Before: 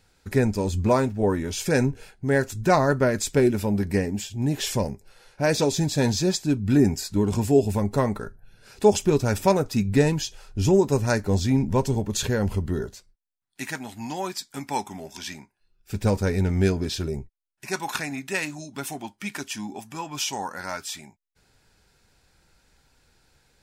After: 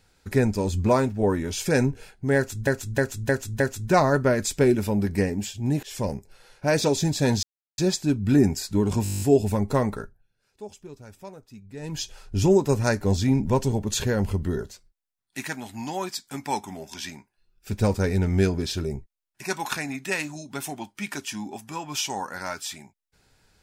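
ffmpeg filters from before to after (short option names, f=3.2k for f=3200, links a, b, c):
-filter_complex "[0:a]asplit=18[a][b][c][d][e][f][g][h][i][j][k][l][m][n][o][p][q][r];[a]atrim=end=2.672[s];[b]atrim=start=2.358:end=2.672[t];[c]atrim=start=2.358:end=2.672[u];[d]atrim=start=2.358:end=2.672[v];[e]atrim=start=2.358:end=4.59,asetpts=PTS-STARTPTS,afade=t=out:st=2.228:d=0.004:c=hsin:silence=0.0630957[w];[f]atrim=start=4.59:end=6.19,asetpts=PTS-STARTPTS,afade=t=in:d=0.29:silence=0.0630957,afade=t=out:st=1.596:d=0.004:c=hsin,apad=pad_dur=0.35[x];[g]atrim=start=6.19:end=7.462,asetpts=PTS-STARTPTS,afade=t=in:d=0.004:c=hsin[y];[h]atrim=start=7.438:end=7.462[z];[i]atrim=start=7.438:end=7.462[aa];[j]atrim=start=7.438:end=7.462[ab];[k]atrim=start=7.438:end=7.462[ac];[l]atrim=start=7.438:end=7.462[ad];[m]atrim=start=7.438:end=7.462[ae];[n]atrim=start=7.438:end=7.462[af];[o]atrim=start=7.438:end=7.462[ag];[p]atrim=start=7.438:end=8.54,asetpts=PTS-STARTPTS,afade=t=out:st=0.802:d=0.3:c=qua:silence=0.0794328[ah];[q]atrim=start=8.54:end=9.96,asetpts=PTS-STARTPTS,volume=-22dB[ai];[r]atrim=start=9.96,asetpts=PTS-STARTPTS,afade=t=in:d=0.3:c=qua:silence=0.0794328[aj];[s][t]acrossfade=d=0.004:c1=hsin:c2=hsin[ak];[ak][u]acrossfade=d=0.004:c1=hsin:c2=hsin[al];[al][v]acrossfade=d=0.004:c1=hsin:c2=hsin[am];[w][x][y]concat=n=3:v=0:a=1[an];[am][an]acrossfade=d=0.004:c1=hsin:c2=hsin[ao];[ao][z]acrossfade=d=0.004:c1=hsin:c2=hsin[ap];[ap][aa]acrossfade=d=0.004:c1=hsin:c2=hsin[aq];[aq][ab]acrossfade=d=0.004:c1=hsin:c2=hsin[ar];[ar][ac]acrossfade=d=0.004:c1=hsin:c2=hsin[as];[as][ad]acrossfade=d=0.004:c1=hsin:c2=hsin[at];[at][ae]acrossfade=d=0.004:c1=hsin:c2=hsin[au];[au][af]acrossfade=d=0.004:c1=hsin:c2=hsin[av];[av][ag]acrossfade=d=0.004:c1=hsin:c2=hsin[aw];[ah][ai][aj]concat=n=3:v=0:a=1[ax];[aw][ax]acrossfade=d=0.004:c1=hsin:c2=hsin"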